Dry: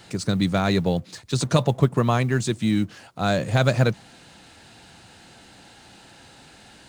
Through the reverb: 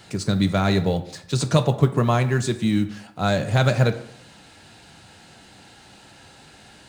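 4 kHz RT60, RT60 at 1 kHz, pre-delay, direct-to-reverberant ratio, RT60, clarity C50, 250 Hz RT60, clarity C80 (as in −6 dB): 0.45 s, 0.65 s, 3 ms, 8.0 dB, 0.70 s, 13.0 dB, 0.70 s, 16.0 dB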